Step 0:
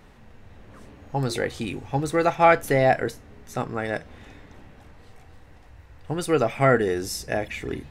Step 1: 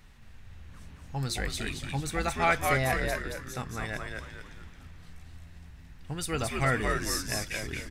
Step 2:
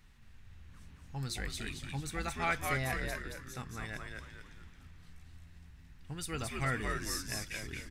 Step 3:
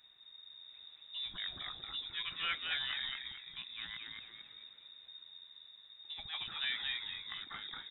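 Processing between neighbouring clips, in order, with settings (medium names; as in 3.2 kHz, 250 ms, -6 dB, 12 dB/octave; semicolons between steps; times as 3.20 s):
peaking EQ 480 Hz -14 dB 2.8 oct; on a send: frequency-shifting echo 223 ms, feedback 41%, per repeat -88 Hz, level -3 dB
peaking EQ 610 Hz -5 dB 1.1 oct; trim -6 dB
frequency inversion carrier 3.7 kHz; trim -4.5 dB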